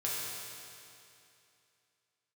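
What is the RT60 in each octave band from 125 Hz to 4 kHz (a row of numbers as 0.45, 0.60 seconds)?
2.7, 2.7, 2.7, 2.7, 2.7, 2.6 seconds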